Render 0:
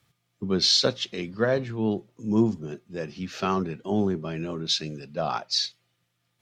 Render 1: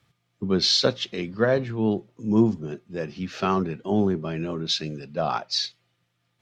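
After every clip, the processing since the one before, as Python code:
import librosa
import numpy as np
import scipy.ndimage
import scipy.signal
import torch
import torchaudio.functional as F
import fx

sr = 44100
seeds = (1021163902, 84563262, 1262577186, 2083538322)

y = fx.high_shelf(x, sr, hz=7000.0, db=-10.5)
y = y * librosa.db_to_amplitude(2.5)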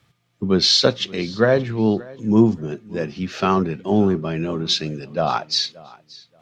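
y = fx.echo_feedback(x, sr, ms=578, feedback_pct=21, wet_db=-22.0)
y = y * librosa.db_to_amplitude(5.0)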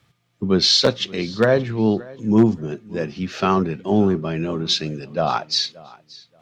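y = 10.0 ** (-5.0 / 20.0) * (np.abs((x / 10.0 ** (-5.0 / 20.0) + 3.0) % 4.0 - 2.0) - 1.0)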